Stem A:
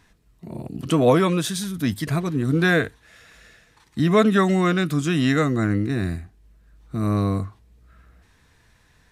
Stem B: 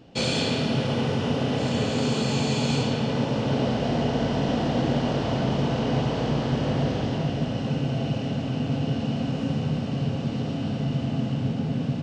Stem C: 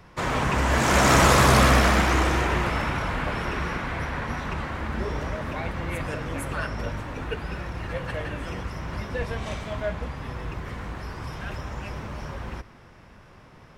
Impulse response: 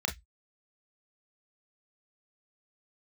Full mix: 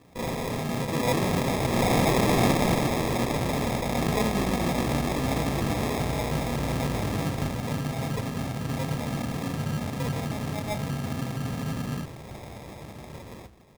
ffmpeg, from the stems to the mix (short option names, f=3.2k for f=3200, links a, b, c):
-filter_complex "[0:a]volume=-13dB[a];[1:a]volume=-6dB,asplit=2[b][c];[c]volume=-9dB[d];[2:a]highpass=f=88:w=0.5412,highpass=f=88:w=1.3066,adelay=850,volume=-5.5dB,asplit=2[e][f];[f]volume=-17dB[g];[3:a]atrim=start_sample=2205[h];[d][g]amix=inputs=2:normalize=0[i];[i][h]afir=irnorm=-1:irlink=0[j];[a][b][e][j]amix=inputs=4:normalize=0,acrusher=samples=30:mix=1:aa=0.000001"